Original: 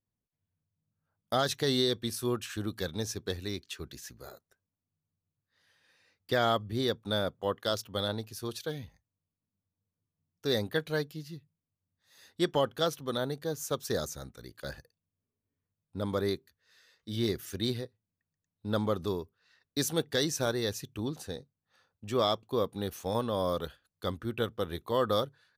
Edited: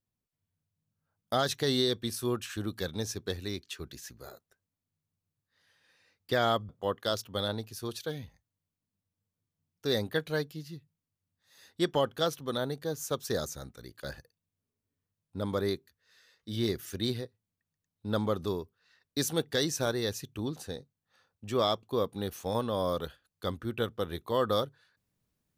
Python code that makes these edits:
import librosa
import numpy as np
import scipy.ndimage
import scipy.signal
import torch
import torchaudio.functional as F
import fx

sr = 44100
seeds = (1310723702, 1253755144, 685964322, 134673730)

y = fx.edit(x, sr, fx.cut(start_s=6.69, length_s=0.6), tone=tone)